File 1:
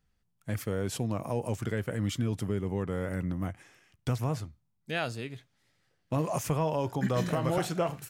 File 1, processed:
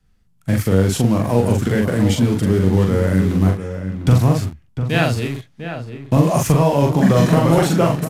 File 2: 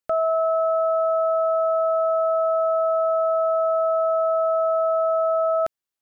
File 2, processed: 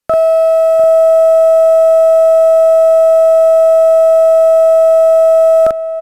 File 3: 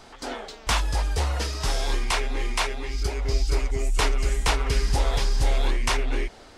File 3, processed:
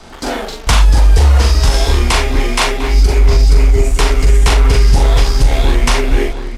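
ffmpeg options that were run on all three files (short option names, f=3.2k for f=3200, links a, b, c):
-filter_complex "[0:a]adynamicequalizer=threshold=0.00447:dfrequency=120:dqfactor=2.8:tfrequency=120:tqfactor=2.8:attack=5:release=100:ratio=0.375:range=3:mode=cutabove:tftype=bell,acrossover=split=300[a][b];[a]acontrast=60[c];[c][b]amix=inputs=2:normalize=0,asoftclip=type=tanh:threshold=-9dB,asplit=2[d][e];[e]acrusher=bits=5:mix=0:aa=0.000001,volume=-8.5dB[f];[d][f]amix=inputs=2:normalize=0,asplit=2[g][h];[h]adelay=42,volume=-3dB[i];[g][i]amix=inputs=2:normalize=0,asplit=2[j][k];[k]adelay=699.7,volume=-9dB,highshelf=f=4k:g=-15.7[l];[j][l]amix=inputs=2:normalize=0,aresample=32000,aresample=44100,alimiter=level_in=9dB:limit=-1dB:release=50:level=0:latency=1,volume=-1dB"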